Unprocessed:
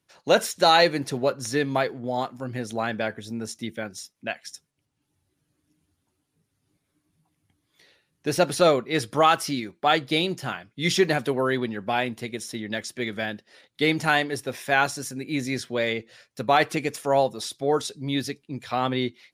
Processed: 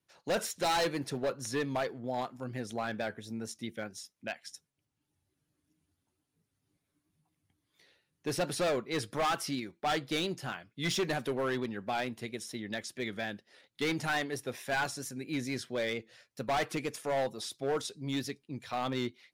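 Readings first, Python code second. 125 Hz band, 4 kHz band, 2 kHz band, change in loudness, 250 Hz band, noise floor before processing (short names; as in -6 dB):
-8.5 dB, -9.5 dB, -9.5 dB, -9.5 dB, -8.5 dB, -77 dBFS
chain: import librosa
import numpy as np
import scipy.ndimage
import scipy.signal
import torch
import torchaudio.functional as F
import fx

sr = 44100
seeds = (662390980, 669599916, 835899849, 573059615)

y = fx.vibrato(x, sr, rate_hz=4.4, depth_cents=42.0)
y = np.clip(y, -10.0 ** (-19.5 / 20.0), 10.0 ** (-19.5 / 20.0))
y = y * 10.0 ** (-7.0 / 20.0)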